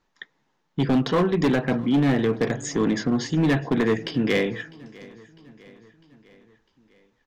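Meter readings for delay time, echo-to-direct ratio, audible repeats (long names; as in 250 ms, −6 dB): 652 ms, −21.0 dB, 3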